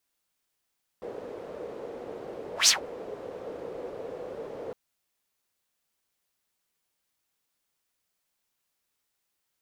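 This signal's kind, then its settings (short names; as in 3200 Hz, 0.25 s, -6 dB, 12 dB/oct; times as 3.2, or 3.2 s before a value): whoosh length 3.71 s, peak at 1.66, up 0.13 s, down 0.13 s, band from 480 Hz, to 6100 Hz, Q 4.5, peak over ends 22 dB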